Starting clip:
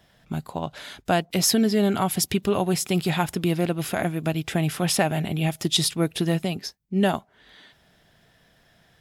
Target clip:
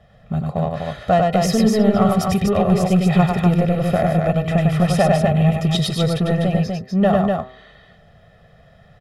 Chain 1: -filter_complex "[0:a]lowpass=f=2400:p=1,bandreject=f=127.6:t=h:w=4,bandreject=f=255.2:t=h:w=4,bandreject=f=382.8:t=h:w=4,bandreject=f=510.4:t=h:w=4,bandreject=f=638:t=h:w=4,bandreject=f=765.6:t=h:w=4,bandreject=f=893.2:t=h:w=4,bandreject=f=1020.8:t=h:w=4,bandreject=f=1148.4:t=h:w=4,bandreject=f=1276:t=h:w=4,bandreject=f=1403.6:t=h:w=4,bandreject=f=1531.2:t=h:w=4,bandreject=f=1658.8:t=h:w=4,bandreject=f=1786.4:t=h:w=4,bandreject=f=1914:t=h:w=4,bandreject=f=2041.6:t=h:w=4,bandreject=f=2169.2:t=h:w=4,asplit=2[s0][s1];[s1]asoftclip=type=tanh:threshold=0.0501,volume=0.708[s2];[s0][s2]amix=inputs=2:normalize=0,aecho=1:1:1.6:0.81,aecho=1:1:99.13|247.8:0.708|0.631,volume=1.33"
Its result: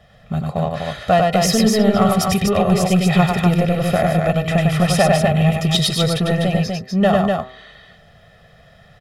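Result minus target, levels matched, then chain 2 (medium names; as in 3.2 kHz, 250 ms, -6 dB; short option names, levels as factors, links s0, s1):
2 kHz band +4.0 dB
-filter_complex "[0:a]lowpass=f=940:p=1,bandreject=f=127.6:t=h:w=4,bandreject=f=255.2:t=h:w=4,bandreject=f=382.8:t=h:w=4,bandreject=f=510.4:t=h:w=4,bandreject=f=638:t=h:w=4,bandreject=f=765.6:t=h:w=4,bandreject=f=893.2:t=h:w=4,bandreject=f=1020.8:t=h:w=4,bandreject=f=1148.4:t=h:w=4,bandreject=f=1276:t=h:w=4,bandreject=f=1403.6:t=h:w=4,bandreject=f=1531.2:t=h:w=4,bandreject=f=1658.8:t=h:w=4,bandreject=f=1786.4:t=h:w=4,bandreject=f=1914:t=h:w=4,bandreject=f=2041.6:t=h:w=4,bandreject=f=2169.2:t=h:w=4,asplit=2[s0][s1];[s1]asoftclip=type=tanh:threshold=0.0501,volume=0.708[s2];[s0][s2]amix=inputs=2:normalize=0,aecho=1:1:1.6:0.81,aecho=1:1:99.13|247.8:0.708|0.631,volume=1.33"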